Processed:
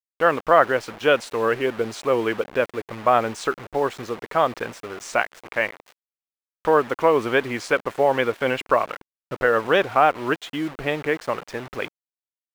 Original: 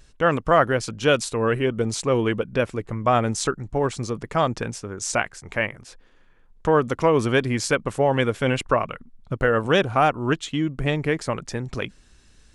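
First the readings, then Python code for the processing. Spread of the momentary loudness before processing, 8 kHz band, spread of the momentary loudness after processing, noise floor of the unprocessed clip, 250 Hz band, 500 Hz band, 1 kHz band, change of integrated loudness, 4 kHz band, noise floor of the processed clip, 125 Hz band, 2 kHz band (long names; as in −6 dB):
10 LU, −9.0 dB, 12 LU, −55 dBFS, −4.0 dB, +1.0 dB, +2.5 dB, +0.5 dB, −2.0 dB, below −85 dBFS, −11.0 dB, +2.0 dB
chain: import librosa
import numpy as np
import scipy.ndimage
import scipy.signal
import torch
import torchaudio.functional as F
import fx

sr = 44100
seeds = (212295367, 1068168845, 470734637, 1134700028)

y = fx.quant_dither(x, sr, seeds[0], bits=6, dither='none')
y = fx.bass_treble(y, sr, bass_db=-15, treble_db=-14)
y = y * librosa.db_to_amplitude(2.5)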